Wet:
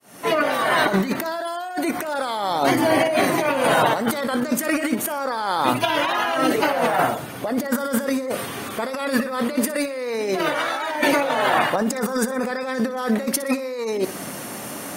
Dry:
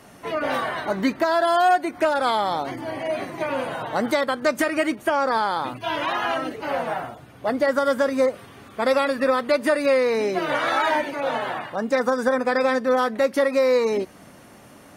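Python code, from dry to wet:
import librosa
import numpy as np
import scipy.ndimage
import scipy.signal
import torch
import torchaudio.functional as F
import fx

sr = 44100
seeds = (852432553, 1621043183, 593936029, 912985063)

y = fx.fade_in_head(x, sr, length_s=0.5)
y = scipy.signal.sosfilt(scipy.signal.butter(2, 140.0, 'highpass', fs=sr, output='sos'), y)
y = fx.high_shelf(y, sr, hz=7100.0, db=11.5)
y = fx.over_compress(y, sr, threshold_db=-30.0, ratio=-1.0)
y = fx.echo_feedback(y, sr, ms=61, feedback_pct=46, wet_db=-16)
y = y * 10.0 ** (7.0 / 20.0)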